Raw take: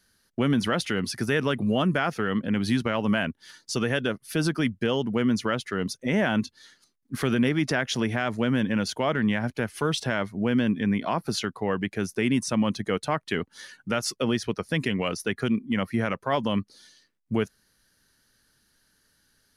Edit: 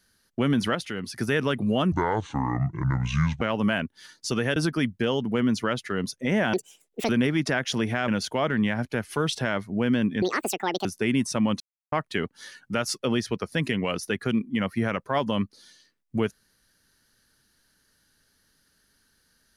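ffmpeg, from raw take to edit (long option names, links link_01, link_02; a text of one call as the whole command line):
ffmpeg -i in.wav -filter_complex "[0:a]asplit=13[link_01][link_02][link_03][link_04][link_05][link_06][link_07][link_08][link_09][link_10][link_11][link_12][link_13];[link_01]atrim=end=0.752[link_14];[link_02]atrim=start=0.748:end=1.162,asetpts=PTS-STARTPTS,volume=-5.5dB[link_15];[link_03]atrim=start=1.158:end=1.924[link_16];[link_04]atrim=start=1.92:end=2.86,asetpts=PTS-STARTPTS,asetrate=27783,aresample=44100[link_17];[link_05]atrim=start=2.856:end=4.012[link_18];[link_06]atrim=start=4.378:end=6.354[link_19];[link_07]atrim=start=6.35:end=7.31,asetpts=PTS-STARTPTS,asetrate=75852,aresample=44100[link_20];[link_08]atrim=start=7.306:end=8.302[link_21];[link_09]atrim=start=8.728:end=10.874[link_22];[link_10]atrim=start=10.87:end=12.02,asetpts=PTS-STARTPTS,asetrate=80262,aresample=44100,atrim=end_sample=27865,asetpts=PTS-STARTPTS[link_23];[link_11]atrim=start=12.016:end=12.77,asetpts=PTS-STARTPTS,afade=type=out:start_time=0.75:duration=0.004:curve=hsin[link_24];[link_12]atrim=start=12.77:end=13.09,asetpts=PTS-STARTPTS,volume=0[link_25];[link_13]atrim=start=13.09,asetpts=PTS-STARTPTS,afade=type=in:duration=0.004:curve=hsin[link_26];[link_14][link_15]acrossfade=duration=0.004:curve1=hsin:curve2=hsin[link_27];[link_27][link_16]acrossfade=duration=0.004:curve1=hsin:curve2=hsin[link_28];[link_28][link_17]acrossfade=duration=0.004:curve1=hsin:curve2=hsin[link_29];[link_29][link_18]acrossfade=duration=0.004:curve1=hsin:curve2=hsin[link_30];[link_30][link_19]acrossfade=duration=0.004:curve1=hsin:curve2=hsin[link_31];[link_31][link_20]acrossfade=duration=0.004:curve1=hsin:curve2=hsin[link_32];[link_32][link_21]acrossfade=duration=0.004:curve1=hsin:curve2=hsin[link_33];[link_33][link_22]acrossfade=duration=0.004:curve1=hsin:curve2=hsin[link_34];[link_34][link_23]acrossfade=duration=0.004:curve1=hsin:curve2=hsin[link_35];[link_24][link_25][link_26]concat=n=3:v=0:a=1[link_36];[link_35][link_36]acrossfade=duration=0.004:curve1=hsin:curve2=hsin" out.wav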